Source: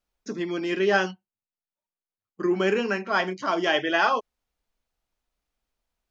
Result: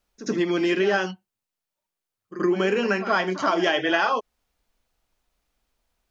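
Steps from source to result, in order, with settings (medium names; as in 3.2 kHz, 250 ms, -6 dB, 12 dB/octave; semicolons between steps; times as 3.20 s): compression 6:1, threshold -26 dBFS, peak gain reduction 10 dB; reverse echo 78 ms -13.5 dB; trim +7.5 dB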